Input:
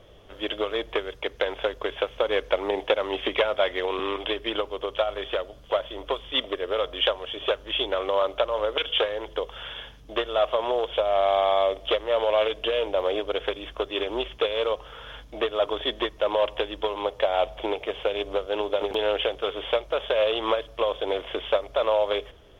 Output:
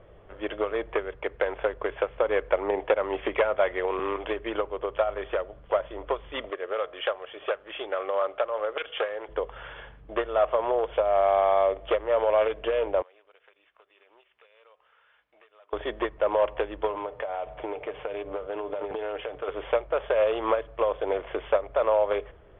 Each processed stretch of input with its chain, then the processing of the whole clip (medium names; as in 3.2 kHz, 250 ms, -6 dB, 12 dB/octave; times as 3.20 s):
6.50–9.29 s: high-pass 560 Hz 6 dB/octave + band-stop 960 Hz, Q 9.4
13.02–15.73 s: differentiator + band-stop 3.3 kHz, Q 15 + compression 2.5:1, threshold -56 dBFS
16.90–19.48 s: high-pass 54 Hz + comb 6.7 ms, depth 37% + compression 10:1, threshold -27 dBFS
whole clip: low-pass 2.2 kHz 24 dB/octave; peaking EQ 260 Hz -7.5 dB 0.24 oct